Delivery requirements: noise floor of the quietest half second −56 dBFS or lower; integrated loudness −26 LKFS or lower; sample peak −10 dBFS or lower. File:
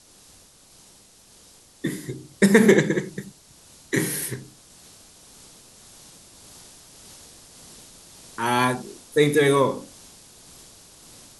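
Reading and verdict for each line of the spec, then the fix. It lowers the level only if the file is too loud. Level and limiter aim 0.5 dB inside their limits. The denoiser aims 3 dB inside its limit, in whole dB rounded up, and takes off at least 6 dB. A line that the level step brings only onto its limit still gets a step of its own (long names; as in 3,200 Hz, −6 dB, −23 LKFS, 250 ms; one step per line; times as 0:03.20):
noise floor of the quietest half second −53 dBFS: out of spec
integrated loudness −21.5 LKFS: out of spec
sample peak −1.5 dBFS: out of spec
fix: level −5 dB
brickwall limiter −10.5 dBFS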